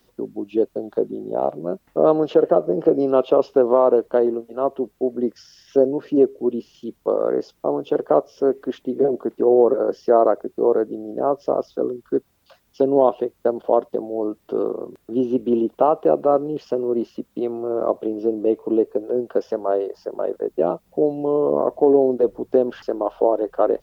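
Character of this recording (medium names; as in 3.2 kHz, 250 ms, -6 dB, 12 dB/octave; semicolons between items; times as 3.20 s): noise floor -64 dBFS; spectral tilt +2.0 dB/octave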